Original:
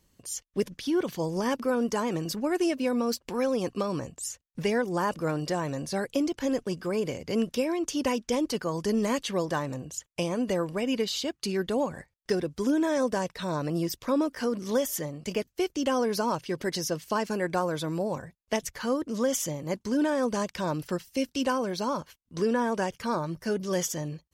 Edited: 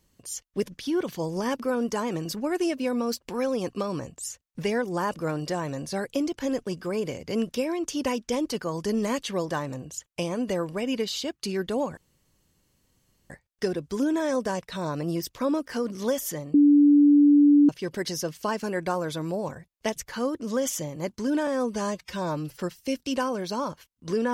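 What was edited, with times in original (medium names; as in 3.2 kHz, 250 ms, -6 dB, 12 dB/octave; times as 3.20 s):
11.97 s: insert room tone 1.33 s
15.21–16.36 s: bleep 290 Hz -13 dBFS
20.14–20.90 s: stretch 1.5×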